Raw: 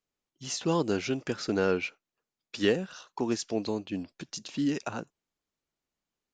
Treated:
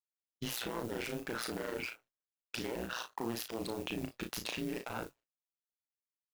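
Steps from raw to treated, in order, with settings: self-modulated delay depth 0.33 ms; expander -53 dBFS; tone controls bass -12 dB, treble -10 dB; in parallel at +2.5 dB: compressor, threshold -41 dBFS, peak gain reduction 17 dB; on the sum: limiter -18.5 dBFS, peak gain reduction 5 dB; level quantiser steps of 23 dB; low shelf 140 Hz +8 dB; modulation noise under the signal 17 dB; AM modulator 120 Hz, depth 100%; on a send: early reflections 35 ms -5.5 dB, 57 ms -14.5 dB; on the sum: gain +9.5 dB

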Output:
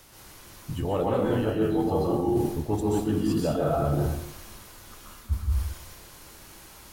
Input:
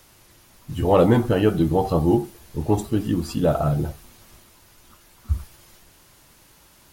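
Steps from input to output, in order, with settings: plate-style reverb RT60 0.68 s, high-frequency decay 0.75×, pre-delay 0.115 s, DRR -4.5 dB; reverse; compressor 16:1, threshold -21 dBFS, peak gain reduction 16.5 dB; reverse

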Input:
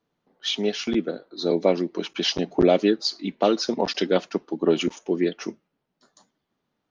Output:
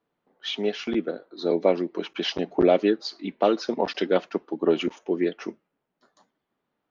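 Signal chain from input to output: tone controls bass -6 dB, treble -13 dB

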